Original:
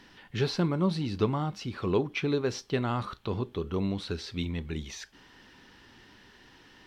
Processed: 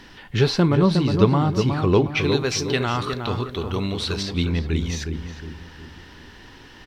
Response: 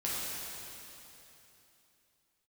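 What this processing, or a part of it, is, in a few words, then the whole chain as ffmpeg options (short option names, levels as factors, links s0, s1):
low shelf boost with a cut just above: -filter_complex "[0:a]asettb=1/sr,asplit=3[s0][s1][s2];[s0]atrim=end=2.214[s3];[s1]atrim=start=2.21:end=4.23,asetpts=PTS-STARTPTS,afade=t=in:d=0.004:c=qsin,afade=t=out:st=2.016:d=0.004:c=qsin,tiltshelf=f=1400:g=-6[s4];[s2]atrim=start=4.226[s5];[s3][s4]acrossfade=d=0.004:c1=hsin:c2=qsin[s6];[s6][s5]acrossfade=d=0.004:c1=qsin:c2=hsin,lowshelf=f=92:g=7,equalizer=f=190:t=o:w=0.77:g=-2,asplit=2[s7][s8];[s8]adelay=362,lowpass=f=1400:p=1,volume=0.562,asplit=2[s9][s10];[s10]adelay=362,lowpass=f=1400:p=1,volume=0.43,asplit=2[s11][s12];[s12]adelay=362,lowpass=f=1400:p=1,volume=0.43,asplit=2[s13][s14];[s14]adelay=362,lowpass=f=1400:p=1,volume=0.43,asplit=2[s15][s16];[s16]adelay=362,lowpass=f=1400:p=1,volume=0.43[s17];[s7][s9][s11][s13][s15][s17]amix=inputs=6:normalize=0,volume=2.82"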